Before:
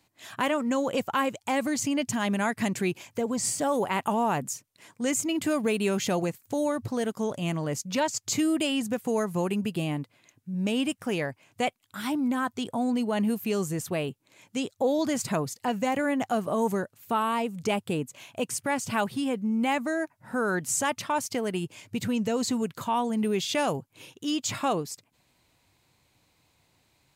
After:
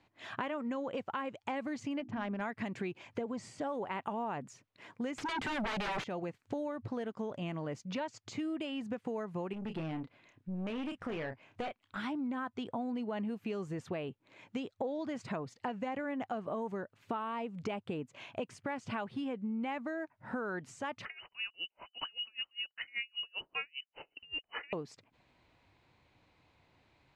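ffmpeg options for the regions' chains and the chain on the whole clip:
-filter_complex "[0:a]asettb=1/sr,asplit=3[a][b][c];[a]atrim=end=2.004[d];[b]atrim=start=2:end=2.41,asetpts=PTS-STARTPTS,afade=t=in:d=0.004:c=qsin,afade=t=out:st=0.406:d=0.004:c=qsin,bandreject=f=60:t=h:w=6,bandreject=f=120:t=h:w=6,bandreject=f=180:t=h:w=6,bandreject=f=240:t=h:w=6,bandreject=f=300:t=h:w=6,bandreject=f=360:t=h:w=6,adynamicsmooth=sensitivity=2:basefreq=1.2k[e];[c]atrim=start=2.406[f];[d][e]acrossfade=d=0.004:c1=hsin:c2=qsin[g];[g][f]acrossfade=d=0.004:c1=qsin:c2=hsin,asettb=1/sr,asplit=3[h][i][j];[h]atrim=end=5.184[k];[i]atrim=start=5.18:end=6.04,asetpts=PTS-STARTPTS,afade=t=in:d=0.004:c=qsin,afade=t=out:st=0.856:d=0.004:c=qsin,highpass=f=170:p=1,equalizer=f=630:t=o:w=0.34:g=-14.5,aeval=exprs='0.15*sin(PI/2*7.08*val(0)/0.15)':c=same[l];[j]atrim=start=6.036[m];[k][l]acrossfade=d=0.004:c1=hsin:c2=qsin[n];[n][m]acrossfade=d=0.004:c1=qsin:c2=hsin,asettb=1/sr,asplit=3[o][p][q];[o]atrim=end=9.534[r];[p]atrim=start=9.53:end=11.97,asetpts=PTS-STARTPTS,afade=t=in:d=0.004:c=qsin,afade=t=out:st=2.436:d=0.004:c=qsin,asplit=2[s][t];[t]adelay=31,volume=-10dB[u];[s][u]amix=inputs=2:normalize=0,atrim=end_sample=107604,aeval=exprs='(tanh(31.6*val(0)+0.3)-tanh(0.3))/31.6':c=same[v];[q]atrim=start=11.966[w];[r][v]acrossfade=d=0.004:c1=hsin:c2=qsin[x];[x][w]acrossfade=d=0.004:c1=qsin:c2=hsin,asettb=1/sr,asplit=3[y][z][aa];[y]atrim=end=21.054[ab];[z]atrim=start=21.05:end=24.73,asetpts=PTS-STARTPTS,afade=t=in:d=0.004:c=qsin,afade=t=out:st=3.676:d=0.004:c=qsin,acontrast=90,lowpass=f=2.6k:t=q:w=0.5098,lowpass=f=2.6k:t=q:w=0.6013,lowpass=f=2.6k:t=q:w=0.9,lowpass=f=2.6k:t=q:w=2.563,afreqshift=-3100,aeval=exprs='val(0)*pow(10,-38*(0.5-0.5*cos(2*PI*5.1*n/s))/20)':c=same[ac];[aa]atrim=start=24.726[ad];[ab][ac]acrossfade=d=0.004:c1=hsin:c2=qsin[ae];[ae][ad]acrossfade=d=0.004:c1=qsin:c2=hsin,equalizer=f=150:t=o:w=1.1:g=-3,acompressor=threshold=-36dB:ratio=6,lowpass=2.8k,volume=1dB"

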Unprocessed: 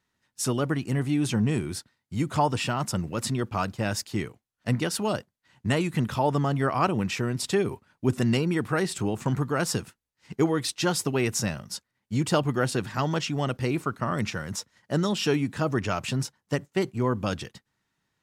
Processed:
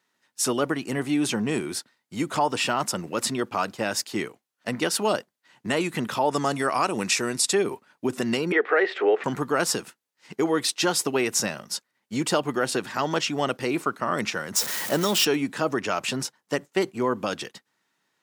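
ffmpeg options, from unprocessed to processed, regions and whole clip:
-filter_complex "[0:a]asettb=1/sr,asplit=3[a][b][c];[a]atrim=end=6.314[d];[b]atrim=start=6.31:end=7.53,asetpts=PTS-STARTPTS,afade=t=in:d=0.004:c=qsin,afade=t=out:st=1.216:d=0.004:c=qsin,lowpass=f=10k:w=0.5412,lowpass=f=10k:w=1.3066,aemphasis=mode=production:type=75fm,bandreject=f=3.1k:w=11[e];[c]atrim=start=7.526[f];[d][e]acrossfade=d=0.004:c1=hsin:c2=qsin[g];[g][f]acrossfade=d=0.004:c1=qsin:c2=hsin,asettb=1/sr,asplit=3[h][i][j];[h]atrim=end=8.524[k];[i]atrim=start=8.52:end=9.24,asetpts=PTS-STARTPTS,afade=t=in:d=0.004:c=qsin,afade=t=out:st=0.716:d=0.004:c=qsin,acontrast=62,highpass=f=420:w=0.5412,highpass=f=420:w=1.3066,equalizer=f=430:t=q:w=4:g=8,equalizer=f=990:t=q:w=4:g=-8,equalizer=f=1.9k:t=q:w=4:g=6,equalizer=f=2.7k:t=q:w=4:g=-3,lowpass=f=2.9k:w=0.5412,lowpass=f=2.9k:w=1.3066[l];[j]atrim=start=9.236[m];[k][l]acrossfade=d=0.004:c1=hsin:c2=qsin[n];[n][m]acrossfade=d=0.004:c1=qsin:c2=hsin,asettb=1/sr,asplit=3[o][p][q];[o]atrim=end=14.564[r];[p]atrim=start=14.56:end=15.25,asetpts=PTS-STARTPTS,afade=t=in:d=0.004:c=qsin,afade=t=out:st=0.686:d=0.004:c=qsin,aeval=exprs='val(0)+0.5*0.0266*sgn(val(0))':c=same,highshelf=f=9.9k:g=12[s];[q]atrim=start=15.246[t];[r][s]acrossfade=d=0.004:c1=hsin:c2=qsin[u];[u][t]acrossfade=d=0.004:c1=qsin:c2=hsin,alimiter=limit=-16dB:level=0:latency=1:release=136,highpass=290,volume=5dB"

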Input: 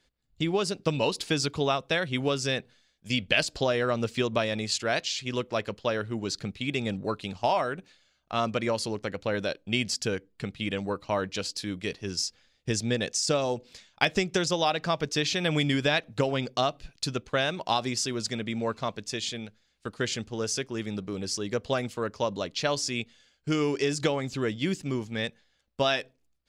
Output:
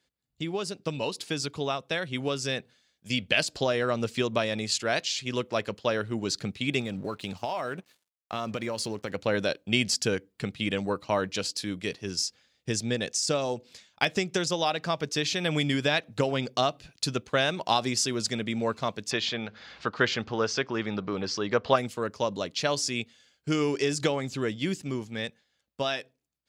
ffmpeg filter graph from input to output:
-filter_complex "[0:a]asettb=1/sr,asplit=3[a][b][c];[a]atrim=end=6.804[d];[b]atrim=start=6.8:end=9.14,asetpts=PTS-STARTPTS,afade=t=in:d=0.004:c=qsin,afade=t=out:st=2.336:d=0.004:c=qsin,acompressor=threshold=-30dB:ratio=5:attack=3.2:release=140:knee=1:detection=peak,aeval=exprs='sgn(val(0))*max(abs(val(0))-0.00112,0)':c=same[e];[c]atrim=start=9.136[f];[d][e]acrossfade=d=0.004:c1=hsin:c2=qsin[g];[g][f]acrossfade=d=0.004:c1=qsin:c2=hsin,asettb=1/sr,asplit=3[h][i][j];[h]atrim=end=19.114[k];[i]atrim=start=19.11:end=21.76,asetpts=PTS-STARTPTS,afade=t=in:d=0.004:c=qsin,afade=t=out:st=2.646:d=0.004:c=qsin,lowpass=f=5.2k:w=0.5412,lowpass=f=5.2k:w=1.3066,equalizer=f=1.1k:t=o:w=1.9:g=10.5,acompressor=mode=upward:threshold=-29dB:ratio=2.5:attack=3.2:release=140:knee=2.83:detection=peak[l];[j]atrim=start=21.756[m];[k][l]acrossfade=d=0.004:c1=hsin:c2=qsin[n];[n][m]acrossfade=d=0.004:c1=qsin:c2=hsin,dynaudnorm=f=440:g=11:m=8dB,highpass=84,highshelf=f=8.3k:g=4,volume=-5dB"

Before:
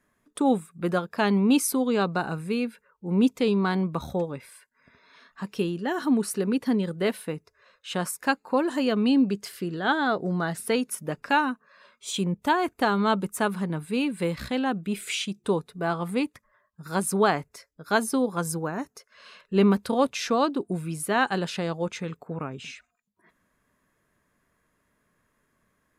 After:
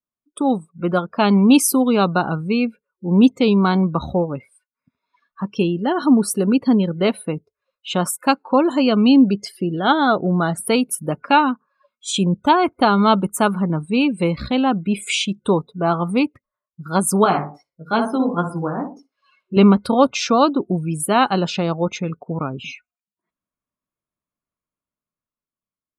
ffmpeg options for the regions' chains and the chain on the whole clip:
-filter_complex "[0:a]asettb=1/sr,asplit=3[a][b][c];[a]atrim=end=17.244[d];[b]atrim=start=17.24:end=19.57,asetpts=PTS-STARTPTS,afade=t=in:d=0.004:c=qsin,afade=t=out:st=2.326:d=0.004:c=qsin,asplit=2[e][f];[f]adelay=60,lowpass=f=2.4k:p=1,volume=-6dB,asplit=2[g][h];[h]adelay=60,lowpass=f=2.4k:p=1,volume=0.41,asplit=2[i][j];[j]adelay=60,lowpass=f=2.4k:p=1,volume=0.41,asplit=2[k][l];[l]adelay=60,lowpass=f=2.4k:p=1,volume=0.41,asplit=2[m][n];[n]adelay=60,lowpass=f=2.4k:p=1,volume=0.41[o];[e][g][i][k][m][o]amix=inputs=6:normalize=0,atrim=end_sample=102753,acrossover=split=3900[p][q];[q]acompressor=threshold=-43dB:ratio=4:attack=1:release=60[r];[p][r]amix=inputs=2:normalize=0,flanger=delay=16:depth=3.1:speed=2.4[s];[c]atrim=start=19.566[t];[d][s]acrossfade=d=0.004:c1=hsin:c2=qsin[u];[u][t]acrossfade=d=0.004:c1=qsin:c2=hsin,afftdn=nr=29:nf=-42,superequalizer=7b=0.708:11b=0.355,dynaudnorm=f=120:g=17:m=6dB,volume=3dB"

